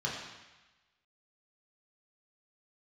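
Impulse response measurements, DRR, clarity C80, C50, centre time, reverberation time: -5.0 dB, 4.0 dB, 2.5 dB, 62 ms, 1.1 s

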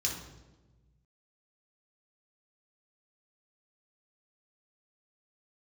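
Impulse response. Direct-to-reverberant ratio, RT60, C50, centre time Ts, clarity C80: -2.0 dB, 1.2 s, 4.5 dB, 38 ms, 8.0 dB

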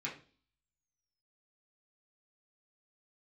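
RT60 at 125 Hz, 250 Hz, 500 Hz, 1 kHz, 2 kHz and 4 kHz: 0.55 s, 0.55 s, 0.45 s, 0.35 s, 0.35 s, 0.50 s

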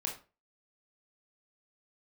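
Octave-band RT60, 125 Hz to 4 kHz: 0.35 s, 0.35 s, 0.35 s, 0.30 s, 0.30 s, 0.25 s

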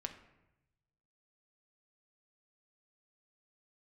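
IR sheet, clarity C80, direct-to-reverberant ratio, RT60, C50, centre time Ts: 13.0 dB, 4.5 dB, 0.90 s, 10.5 dB, 13 ms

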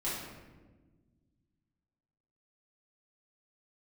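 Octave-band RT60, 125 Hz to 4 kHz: 2.6 s, 2.3 s, 1.6 s, 1.1 s, 1.0 s, 0.75 s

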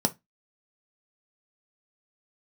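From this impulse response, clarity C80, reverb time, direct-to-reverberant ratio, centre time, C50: 34.5 dB, 0.20 s, 7.0 dB, 4 ms, 22.5 dB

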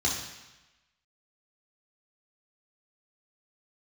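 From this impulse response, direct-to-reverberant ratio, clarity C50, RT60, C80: -4.0 dB, 4.0 dB, 1.0 s, 6.5 dB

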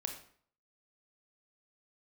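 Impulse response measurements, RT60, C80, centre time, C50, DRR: 0.55 s, 11.0 dB, 18 ms, 7.5 dB, 4.0 dB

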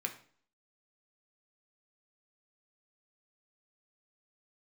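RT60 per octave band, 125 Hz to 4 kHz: 0.50 s, 0.55 s, 0.50 s, 0.50 s, 0.45 s, 0.45 s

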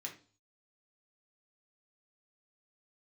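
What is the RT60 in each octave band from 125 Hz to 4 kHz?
0.65 s, 0.45 s, 0.40 s, 0.40 s, 0.35 s, 0.45 s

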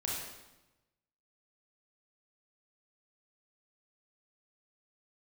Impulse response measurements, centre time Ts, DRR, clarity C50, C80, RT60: 73 ms, -4.5 dB, -0.5 dB, 3.0 dB, 1.0 s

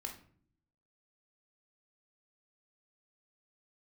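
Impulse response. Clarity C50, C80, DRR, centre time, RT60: 9.0 dB, 13.5 dB, 2.5 dB, 18 ms, 0.55 s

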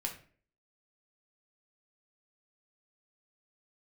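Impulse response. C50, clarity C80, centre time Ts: 9.5 dB, 14.0 dB, 16 ms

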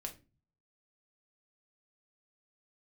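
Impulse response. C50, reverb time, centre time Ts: 13.5 dB, 0.30 s, 10 ms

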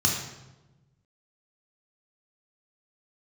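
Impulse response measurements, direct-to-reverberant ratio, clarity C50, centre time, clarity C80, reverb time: -1.5 dB, 3.5 dB, 43 ms, 6.0 dB, 1.1 s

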